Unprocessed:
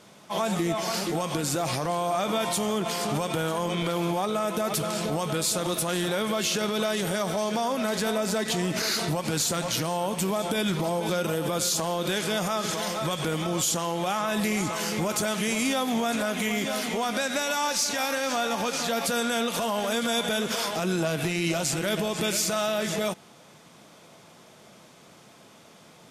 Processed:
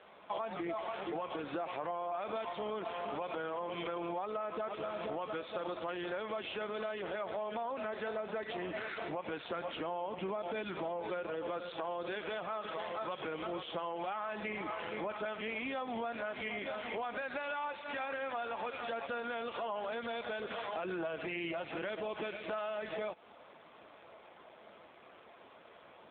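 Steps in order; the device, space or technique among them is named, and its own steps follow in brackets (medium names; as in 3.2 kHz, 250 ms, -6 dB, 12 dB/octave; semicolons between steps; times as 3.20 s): 9.47–10.64 s: dynamic bell 250 Hz, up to +3 dB, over -38 dBFS, Q 0.7; voicemail (band-pass 380–2900 Hz; compression 8:1, threshold -35 dBFS, peak gain reduction 11.5 dB; trim +1 dB; AMR-NB 7.4 kbps 8 kHz)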